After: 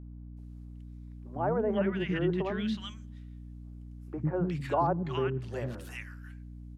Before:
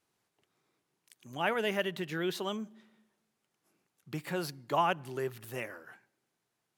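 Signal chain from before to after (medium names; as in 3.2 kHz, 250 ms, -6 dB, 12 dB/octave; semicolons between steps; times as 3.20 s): three bands offset in time mids, lows, highs 100/370 ms, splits 310/1400 Hz; low-pass that closes with the level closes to 1.3 kHz, closed at -29.5 dBFS; bass shelf 460 Hz +11.5 dB; hum 60 Hz, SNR 11 dB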